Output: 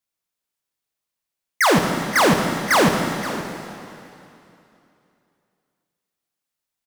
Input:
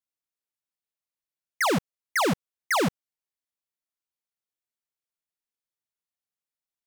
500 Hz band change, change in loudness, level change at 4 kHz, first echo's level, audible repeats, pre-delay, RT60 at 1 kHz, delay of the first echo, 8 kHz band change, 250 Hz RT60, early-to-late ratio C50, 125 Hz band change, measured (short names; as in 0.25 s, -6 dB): +9.0 dB, +7.5 dB, +9.0 dB, -14.5 dB, 1, 6 ms, 2.8 s, 0.524 s, +8.5 dB, 2.8 s, 4.0 dB, +9.0 dB